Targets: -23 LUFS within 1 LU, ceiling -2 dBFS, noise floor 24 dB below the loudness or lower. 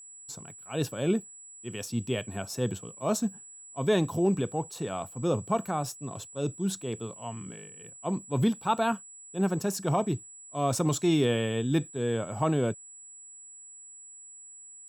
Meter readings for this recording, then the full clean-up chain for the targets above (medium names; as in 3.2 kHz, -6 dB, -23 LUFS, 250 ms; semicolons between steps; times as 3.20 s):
steady tone 7.8 kHz; tone level -46 dBFS; loudness -30.0 LUFS; peak level -14.5 dBFS; loudness target -23.0 LUFS
-> band-stop 7.8 kHz, Q 30; trim +7 dB